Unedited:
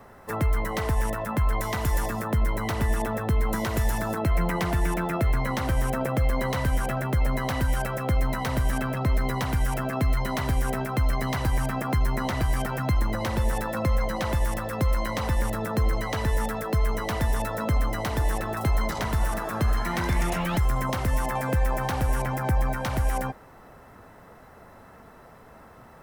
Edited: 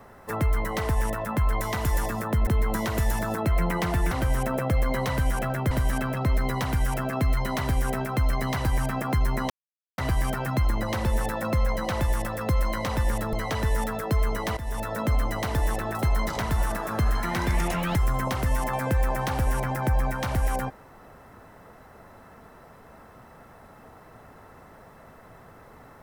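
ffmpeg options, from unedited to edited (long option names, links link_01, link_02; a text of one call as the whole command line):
ffmpeg -i in.wav -filter_complex "[0:a]asplit=7[link_01][link_02][link_03][link_04][link_05][link_06][link_07];[link_01]atrim=end=2.472[link_08];[link_02]atrim=start=3.258:end=4.902[link_09];[link_03]atrim=start=5.578:end=7.182[link_10];[link_04]atrim=start=8.508:end=12.3,asetpts=PTS-STARTPTS,afade=type=out:start_time=3.788:duration=0.004:curve=hsin,apad=pad_dur=0.48[link_11];[link_05]atrim=start=12.3:end=15.652,asetpts=PTS-STARTPTS,afade=type=in:duration=0.004:curve=hsin[link_12];[link_06]atrim=start=15.948:end=17.19,asetpts=PTS-STARTPTS,afade=type=out:start_time=1.238:duration=0.004:curve=hsin:silence=0.177828[link_13];[link_07]atrim=start=17.19,asetpts=PTS-STARTPTS,afade=type=in:duration=0.51:curve=qsin:silence=0.177828[link_14];[link_08][link_09]acrossfade=duration=0.004:curve1=hsin:curve2=hsin[link_15];[link_15][link_10]acrossfade=duration=0.004:curve1=hsin:curve2=hsin[link_16];[link_11][link_12]concat=n=2:v=0:a=1[link_17];[link_16][link_17]acrossfade=duration=0.004:curve1=hsin:curve2=hsin[link_18];[link_13][link_14]concat=n=2:v=0:a=1[link_19];[link_18][link_19]acrossfade=duration=0.004:curve1=hsin:curve2=hsin" out.wav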